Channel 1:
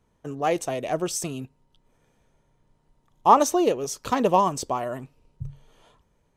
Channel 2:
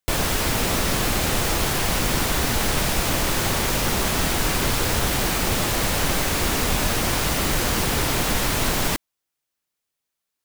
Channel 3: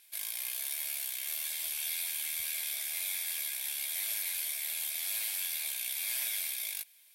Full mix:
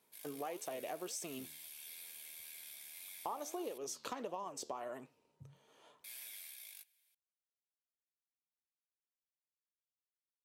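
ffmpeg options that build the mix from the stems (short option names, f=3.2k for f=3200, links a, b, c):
-filter_complex "[0:a]highpass=300,volume=-1.5dB[a];[2:a]volume=-11.5dB,asplit=3[b][c][d];[b]atrim=end=3.78,asetpts=PTS-STARTPTS,afade=t=out:st=3.776:d=0.004:c=hsin[e];[c]atrim=start=3.78:end=6.04,asetpts=PTS-STARTPTS,volume=0[f];[d]atrim=start=6.04,asetpts=PTS-STARTPTS,afade=t=in:d=0.004:c=hsin[g];[e][f][g]concat=n=3:v=0:a=1[h];[a]acompressor=threshold=-31dB:ratio=2.5,volume=0dB[i];[h][i]amix=inputs=2:normalize=0,flanger=delay=4.6:depth=9.2:regen=83:speed=1.6:shape=sinusoidal,acompressor=threshold=-41dB:ratio=3"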